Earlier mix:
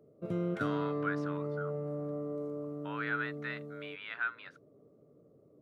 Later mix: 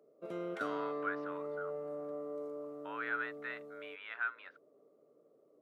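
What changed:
speech: add high-frequency loss of the air 270 metres
master: add high-pass filter 450 Hz 12 dB per octave

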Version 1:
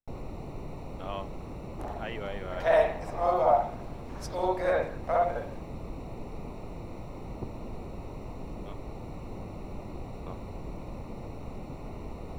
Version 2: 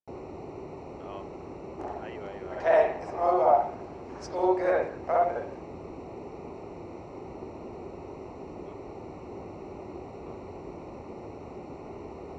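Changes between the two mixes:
speech −6.5 dB
master: add loudspeaker in its box 100–6,900 Hz, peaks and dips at 130 Hz −8 dB, 200 Hz −5 dB, 380 Hz +8 dB, 800 Hz +3 dB, 3,600 Hz −9 dB

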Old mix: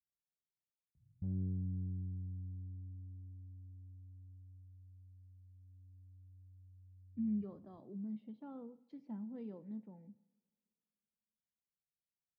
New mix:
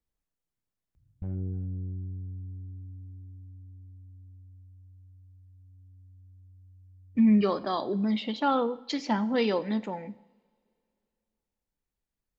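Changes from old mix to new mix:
speech +12.0 dB
master: remove resonant band-pass 150 Hz, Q 1.6

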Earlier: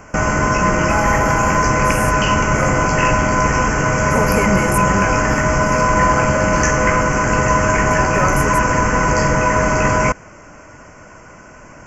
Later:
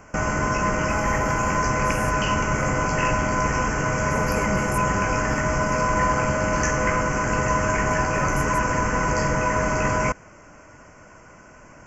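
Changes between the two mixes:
speech −11.5 dB
background −7.0 dB

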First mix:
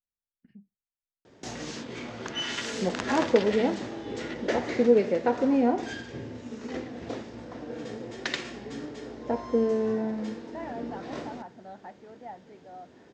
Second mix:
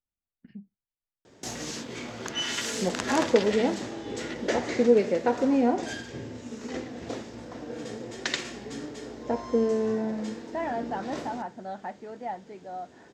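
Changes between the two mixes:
speech +7.5 dB
master: remove high-frequency loss of the air 91 metres

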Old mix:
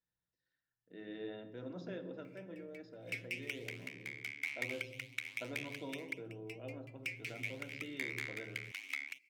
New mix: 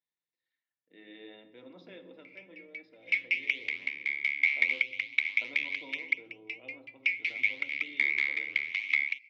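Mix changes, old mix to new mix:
background +6.5 dB
master: add loudspeaker in its box 320–4,600 Hz, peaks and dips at 410 Hz −6 dB, 640 Hz −7 dB, 1,500 Hz −10 dB, 2,200 Hz +10 dB, 3,500 Hz +4 dB

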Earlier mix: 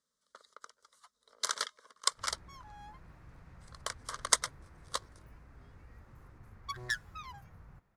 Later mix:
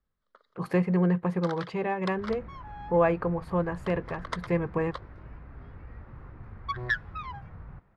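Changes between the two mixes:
speech: unmuted
second sound +10.5 dB
master: add high-frequency loss of the air 380 metres

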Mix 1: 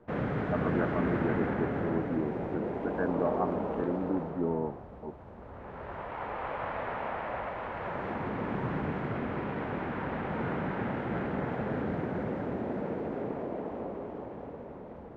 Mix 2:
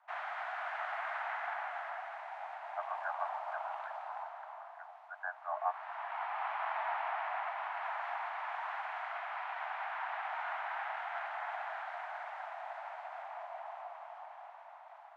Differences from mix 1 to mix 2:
speech: entry +2.25 s
master: add Butterworth high-pass 670 Hz 96 dB per octave

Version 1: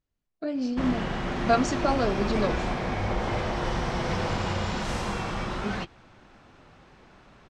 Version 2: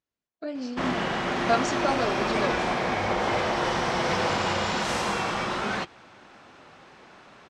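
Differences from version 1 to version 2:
background +6.0 dB
master: add high-pass filter 380 Hz 6 dB per octave

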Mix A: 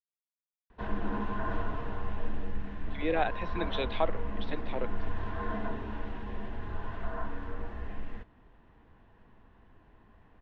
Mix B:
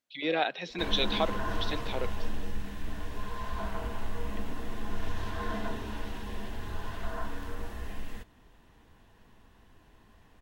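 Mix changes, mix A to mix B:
speech: entry −2.80 s
master: remove low-pass filter 2,000 Hz 12 dB per octave

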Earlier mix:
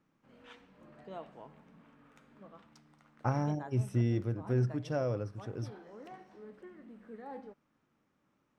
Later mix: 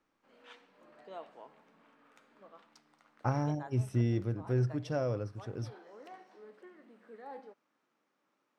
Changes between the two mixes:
background: add high-pass filter 370 Hz 12 dB per octave
master: add parametric band 4,400 Hz +3 dB 0.44 octaves

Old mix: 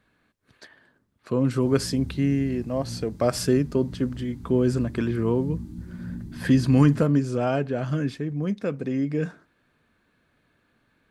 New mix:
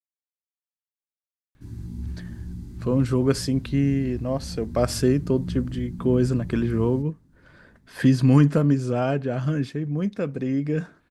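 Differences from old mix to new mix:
speech: entry +1.55 s
master: add low-shelf EQ 81 Hz +9 dB

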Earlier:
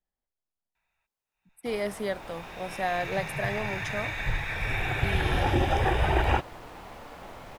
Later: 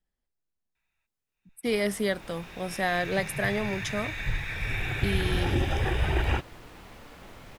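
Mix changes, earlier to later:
speech +7.5 dB
master: add parametric band 780 Hz −8.5 dB 1.5 octaves

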